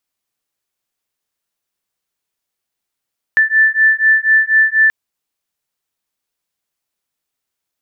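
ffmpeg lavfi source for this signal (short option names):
-f lavfi -i "aevalsrc='0.251*(sin(2*PI*1760*t)+sin(2*PI*1764.1*t))':d=1.53:s=44100"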